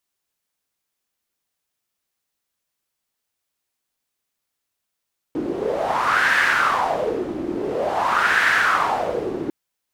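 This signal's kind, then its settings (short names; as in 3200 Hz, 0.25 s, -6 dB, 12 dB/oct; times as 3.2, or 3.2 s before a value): wind-like swept noise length 4.15 s, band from 320 Hz, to 1700 Hz, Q 4.9, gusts 2, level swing 8.5 dB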